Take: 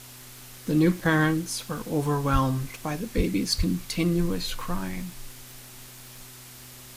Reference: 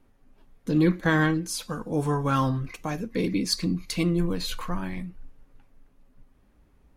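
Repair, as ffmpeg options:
-filter_complex "[0:a]adeclick=t=4,bandreject=f=124.8:t=h:w=4,bandreject=f=249.6:t=h:w=4,bandreject=f=374.4:t=h:w=4,asplit=3[a][b][c];[a]afade=t=out:st=2.32:d=0.02[d];[b]highpass=f=140:w=0.5412,highpass=f=140:w=1.3066,afade=t=in:st=2.32:d=0.02,afade=t=out:st=2.44:d=0.02[e];[c]afade=t=in:st=2.44:d=0.02[f];[d][e][f]amix=inputs=3:normalize=0,asplit=3[g][h][i];[g]afade=t=out:st=3.16:d=0.02[j];[h]highpass=f=140:w=0.5412,highpass=f=140:w=1.3066,afade=t=in:st=3.16:d=0.02,afade=t=out:st=3.28:d=0.02[k];[i]afade=t=in:st=3.28:d=0.02[l];[j][k][l]amix=inputs=3:normalize=0,asplit=3[m][n][o];[m]afade=t=out:st=3.57:d=0.02[p];[n]highpass=f=140:w=0.5412,highpass=f=140:w=1.3066,afade=t=in:st=3.57:d=0.02,afade=t=out:st=3.69:d=0.02[q];[o]afade=t=in:st=3.69:d=0.02[r];[p][q][r]amix=inputs=3:normalize=0,afwtdn=0.0056"

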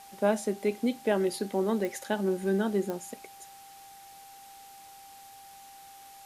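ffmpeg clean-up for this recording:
-af "adeclick=t=4,bandreject=f=790:w=30,afwtdn=0.0022"

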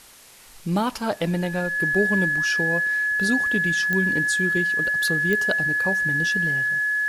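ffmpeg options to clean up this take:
-af "adeclick=t=4,bandreject=f=1.7k:w=30,afwtdn=0.0045"

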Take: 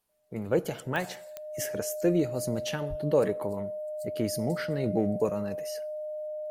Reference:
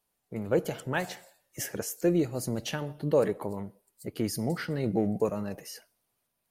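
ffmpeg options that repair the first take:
-filter_complex "[0:a]adeclick=t=4,bandreject=f=610:w=30,asplit=3[a][b][c];[a]afade=t=out:st=2.89:d=0.02[d];[b]highpass=f=140:w=0.5412,highpass=f=140:w=1.3066,afade=t=in:st=2.89:d=0.02,afade=t=out:st=3.01:d=0.02[e];[c]afade=t=in:st=3.01:d=0.02[f];[d][e][f]amix=inputs=3:normalize=0"

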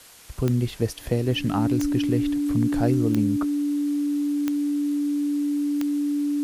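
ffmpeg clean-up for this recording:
-af "adeclick=t=4,bandreject=f=290:w=30,afwtdn=0.0045"

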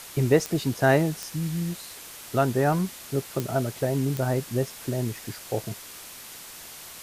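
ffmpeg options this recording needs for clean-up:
-af "adeclick=t=4,afwtdn=0.0089"

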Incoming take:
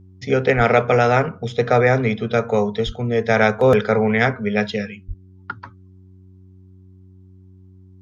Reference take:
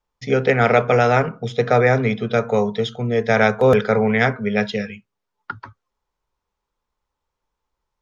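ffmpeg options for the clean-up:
-filter_complex "[0:a]bandreject=f=93.4:t=h:w=4,bandreject=f=186.8:t=h:w=4,bandreject=f=280.2:t=h:w=4,bandreject=f=373.6:t=h:w=4,asplit=3[a][b][c];[a]afade=t=out:st=0.56:d=0.02[d];[b]highpass=f=140:w=0.5412,highpass=f=140:w=1.3066,afade=t=in:st=0.56:d=0.02,afade=t=out:st=0.68:d=0.02[e];[c]afade=t=in:st=0.68:d=0.02[f];[d][e][f]amix=inputs=3:normalize=0,asplit=3[g][h][i];[g]afade=t=out:st=2.85:d=0.02[j];[h]highpass=f=140:w=0.5412,highpass=f=140:w=1.3066,afade=t=in:st=2.85:d=0.02,afade=t=out:st=2.97:d=0.02[k];[i]afade=t=in:st=2.97:d=0.02[l];[j][k][l]amix=inputs=3:normalize=0,asplit=3[m][n][o];[m]afade=t=out:st=5.07:d=0.02[p];[n]highpass=f=140:w=0.5412,highpass=f=140:w=1.3066,afade=t=in:st=5.07:d=0.02,afade=t=out:st=5.19:d=0.02[q];[o]afade=t=in:st=5.19:d=0.02[r];[p][q][r]amix=inputs=3:normalize=0"

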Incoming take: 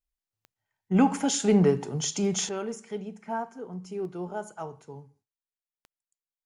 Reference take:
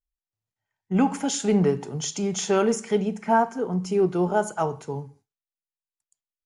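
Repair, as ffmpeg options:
-af "adeclick=t=4,asetnsamples=n=441:p=0,asendcmd='2.49 volume volume 12dB',volume=0dB"

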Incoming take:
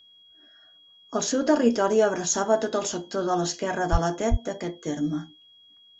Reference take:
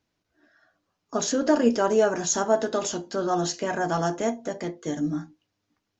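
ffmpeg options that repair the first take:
-filter_complex "[0:a]bandreject=f=3.3k:w=30,asplit=3[a][b][c];[a]afade=t=out:st=3.91:d=0.02[d];[b]highpass=f=140:w=0.5412,highpass=f=140:w=1.3066,afade=t=in:st=3.91:d=0.02,afade=t=out:st=4.03:d=0.02[e];[c]afade=t=in:st=4.03:d=0.02[f];[d][e][f]amix=inputs=3:normalize=0,asplit=3[g][h][i];[g]afade=t=out:st=4.3:d=0.02[j];[h]highpass=f=140:w=0.5412,highpass=f=140:w=1.3066,afade=t=in:st=4.3:d=0.02,afade=t=out:st=4.42:d=0.02[k];[i]afade=t=in:st=4.42:d=0.02[l];[j][k][l]amix=inputs=3:normalize=0"

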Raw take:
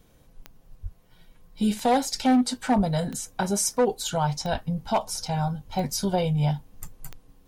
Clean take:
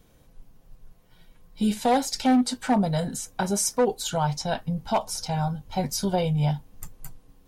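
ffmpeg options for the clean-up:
-filter_complex "[0:a]adeclick=t=4,asplit=3[a][b][c];[a]afade=t=out:st=0.82:d=0.02[d];[b]highpass=f=140:w=0.5412,highpass=f=140:w=1.3066,afade=t=in:st=0.82:d=0.02,afade=t=out:st=0.94:d=0.02[e];[c]afade=t=in:st=0.94:d=0.02[f];[d][e][f]amix=inputs=3:normalize=0,asplit=3[g][h][i];[g]afade=t=out:st=2.76:d=0.02[j];[h]highpass=f=140:w=0.5412,highpass=f=140:w=1.3066,afade=t=in:st=2.76:d=0.02,afade=t=out:st=2.88:d=0.02[k];[i]afade=t=in:st=2.88:d=0.02[l];[j][k][l]amix=inputs=3:normalize=0,asplit=3[m][n][o];[m]afade=t=out:st=4.51:d=0.02[p];[n]highpass=f=140:w=0.5412,highpass=f=140:w=1.3066,afade=t=in:st=4.51:d=0.02,afade=t=out:st=4.63:d=0.02[q];[o]afade=t=in:st=4.63:d=0.02[r];[p][q][r]amix=inputs=3:normalize=0"

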